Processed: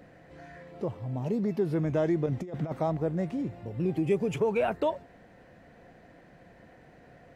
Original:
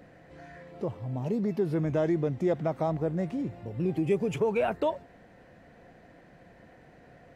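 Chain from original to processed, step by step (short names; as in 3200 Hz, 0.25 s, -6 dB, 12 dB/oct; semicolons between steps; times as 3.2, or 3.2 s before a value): 2.26–2.79 negative-ratio compressor -31 dBFS, ratio -0.5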